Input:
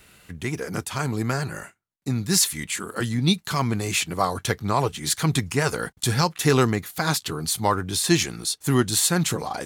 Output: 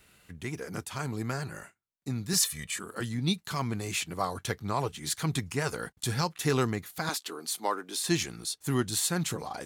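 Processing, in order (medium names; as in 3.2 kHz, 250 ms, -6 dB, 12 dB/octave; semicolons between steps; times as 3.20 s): 2.33–2.79 s: comb 1.7 ms, depth 75%; 7.09–8.04 s: high-pass 270 Hz 24 dB/octave; trim -8 dB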